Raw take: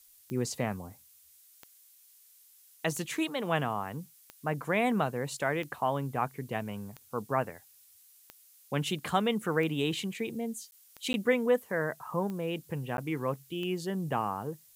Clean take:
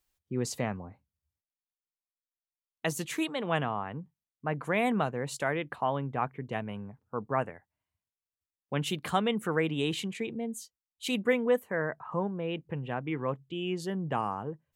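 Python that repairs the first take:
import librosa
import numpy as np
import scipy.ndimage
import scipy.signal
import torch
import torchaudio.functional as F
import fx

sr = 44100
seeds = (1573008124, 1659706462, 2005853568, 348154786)

y = fx.fix_declick_ar(x, sr, threshold=10.0)
y = fx.fix_interpolate(y, sr, at_s=(10.71, 11.13, 12.97), length_ms=11.0)
y = fx.noise_reduce(y, sr, print_start_s=1.87, print_end_s=2.37, reduce_db=30.0)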